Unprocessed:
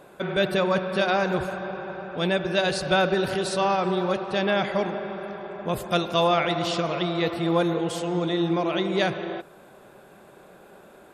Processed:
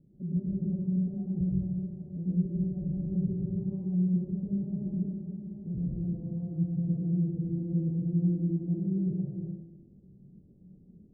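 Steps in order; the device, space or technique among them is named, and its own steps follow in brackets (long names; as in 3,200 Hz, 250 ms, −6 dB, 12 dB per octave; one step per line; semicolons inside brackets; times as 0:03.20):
club heard from the street (brickwall limiter −18.5 dBFS, peak gain reduction 9.5 dB; low-pass filter 210 Hz 24 dB per octave; convolution reverb RT60 0.85 s, pre-delay 96 ms, DRR −4.5 dB)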